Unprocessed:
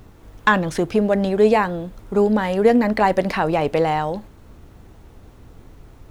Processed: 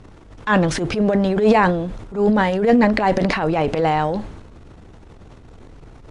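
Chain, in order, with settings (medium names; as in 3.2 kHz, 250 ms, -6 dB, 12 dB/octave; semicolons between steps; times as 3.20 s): transient shaper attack -11 dB, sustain +9 dB; Bessel low-pass 6.5 kHz, order 2; trim +1.5 dB; MP3 64 kbps 24 kHz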